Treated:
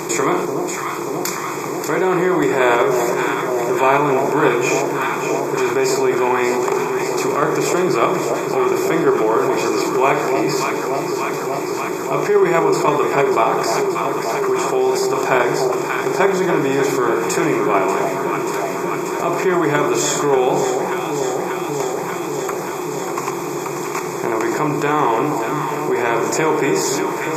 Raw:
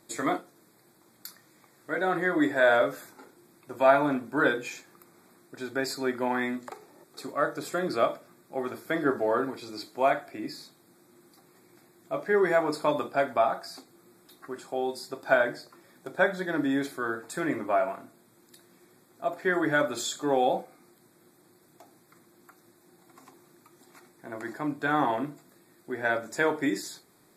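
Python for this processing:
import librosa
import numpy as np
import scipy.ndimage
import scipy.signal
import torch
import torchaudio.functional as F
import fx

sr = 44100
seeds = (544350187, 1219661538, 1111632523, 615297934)

p1 = fx.bin_compress(x, sr, power=0.6)
p2 = fx.level_steps(p1, sr, step_db=19)
p3 = p1 + (p2 * librosa.db_to_amplitude(2.0))
p4 = fx.ripple_eq(p3, sr, per_octave=0.75, db=13)
p5 = fx.echo_alternate(p4, sr, ms=293, hz=900.0, feedback_pct=83, wet_db=-8)
p6 = fx.env_flatten(p5, sr, amount_pct=50)
y = p6 * librosa.db_to_amplitude(-2.5)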